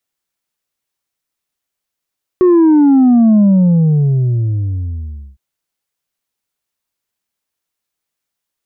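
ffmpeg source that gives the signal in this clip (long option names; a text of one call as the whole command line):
ffmpeg -f lavfi -i "aevalsrc='0.501*clip((2.96-t)/1.99,0,1)*tanh(1.41*sin(2*PI*370*2.96/log(65/370)*(exp(log(65/370)*t/2.96)-1)))/tanh(1.41)':duration=2.96:sample_rate=44100" out.wav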